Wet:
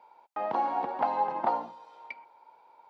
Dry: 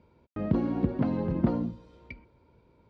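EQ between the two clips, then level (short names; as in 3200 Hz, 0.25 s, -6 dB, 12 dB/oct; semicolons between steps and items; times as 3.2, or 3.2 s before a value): resonant high-pass 830 Hz, resonance Q 8; +2.5 dB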